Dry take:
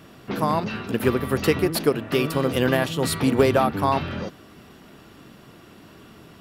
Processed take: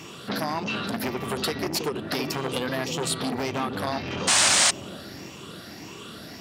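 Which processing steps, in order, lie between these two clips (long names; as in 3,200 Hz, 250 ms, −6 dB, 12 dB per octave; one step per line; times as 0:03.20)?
rippled gain that drifts along the octave scale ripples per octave 0.71, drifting +1.7 Hz, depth 9 dB
high-pass filter 110 Hz 6 dB per octave
parametric band 5,200 Hz +10 dB 1.7 octaves
downward compressor 6 to 1, threshold −27 dBFS, peak gain reduction 15.5 dB
sound drawn into the spectrogram noise, 0:04.27–0:04.71, 540–9,500 Hz −22 dBFS
bucket-brigade delay 326 ms, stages 1,024, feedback 61%, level −7 dB
saturating transformer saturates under 2,300 Hz
level +4 dB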